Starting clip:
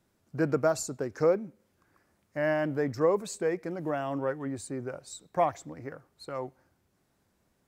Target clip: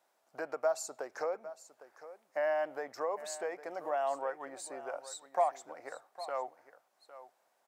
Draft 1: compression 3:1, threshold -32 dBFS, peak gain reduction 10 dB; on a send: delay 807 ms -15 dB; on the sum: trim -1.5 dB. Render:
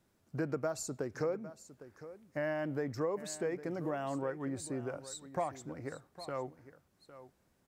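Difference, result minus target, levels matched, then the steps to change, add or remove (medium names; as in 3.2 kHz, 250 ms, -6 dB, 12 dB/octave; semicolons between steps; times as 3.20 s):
1 kHz band -5.5 dB
add after compression: resonant high-pass 710 Hz, resonance Q 2.6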